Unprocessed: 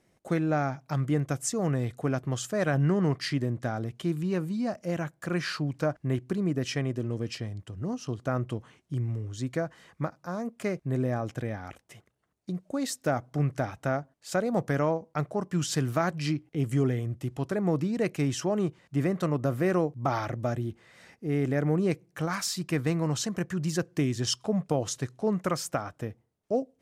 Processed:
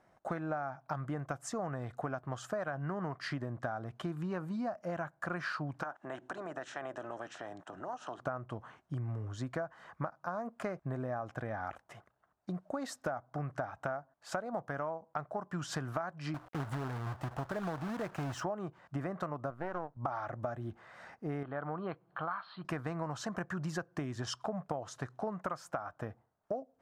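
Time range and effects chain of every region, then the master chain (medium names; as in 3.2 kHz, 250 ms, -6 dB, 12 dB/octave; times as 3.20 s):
5.82–8.19 s: spectral peaks clipped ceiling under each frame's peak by 18 dB + cabinet simulation 200–8800 Hz, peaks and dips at 210 Hz -7 dB, 470 Hz -7 dB, 1.1 kHz -6 dB, 2.2 kHz -7 dB, 4.7 kHz -10 dB + compression 2.5:1, threshold -43 dBFS
16.34–18.43 s: bass shelf 110 Hz +11.5 dB + compression 1.5:1, threshold -33 dBFS + companded quantiser 4-bit
19.50–19.97 s: partial rectifier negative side -12 dB + treble shelf 6.2 kHz -10 dB + upward expansion, over -36 dBFS
21.43–22.65 s: upward compressor, threshold -42 dBFS + rippled Chebyshev low-pass 4.4 kHz, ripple 9 dB
whole clip: low-pass 3.9 kHz 6 dB/octave; high-order bell 1 kHz +11.5 dB; compression 12:1, threshold -30 dBFS; trim -3.5 dB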